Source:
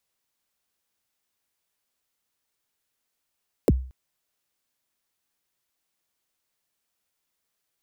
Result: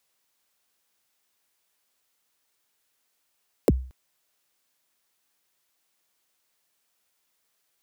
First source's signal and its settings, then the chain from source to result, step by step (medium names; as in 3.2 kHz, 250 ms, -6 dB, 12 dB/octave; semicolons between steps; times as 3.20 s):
kick drum length 0.23 s, from 590 Hz, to 64 Hz, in 34 ms, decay 0.43 s, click on, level -11.5 dB
bass shelf 210 Hz -8 dB; in parallel at 0 dB: peak limiter -21 dBFS